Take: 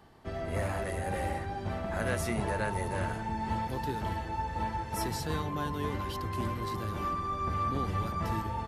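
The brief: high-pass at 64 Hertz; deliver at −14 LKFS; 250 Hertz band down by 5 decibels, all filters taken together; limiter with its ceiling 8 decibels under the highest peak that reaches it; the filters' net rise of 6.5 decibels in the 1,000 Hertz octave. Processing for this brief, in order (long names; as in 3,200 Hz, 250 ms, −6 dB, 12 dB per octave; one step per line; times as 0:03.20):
high-pass filter 64 Hz
parametric band 250 Hz −7.5 dB
parametric band 1,000 Hz +8 dB
level +17.5 dB
brickwall limiter −5 dBFS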